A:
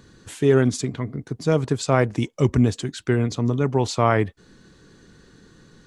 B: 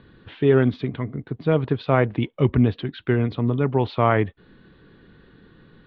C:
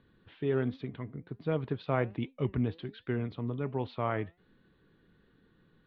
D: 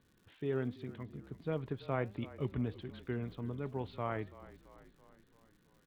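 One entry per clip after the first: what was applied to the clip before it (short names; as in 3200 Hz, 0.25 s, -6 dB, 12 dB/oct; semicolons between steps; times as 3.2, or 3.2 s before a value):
steep low-pass 3700 Hz 48 dB/oct
flange 1.3 Hz, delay 3.6 ms, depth 3 ms, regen +89%; vocal rider 2 s; gain -8 dB
frequency-shifting echo 0.334 s, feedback 58%, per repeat -32 Hz, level -17.5 dB; crackle 190/s -53 dBFS; gain -5.5 dB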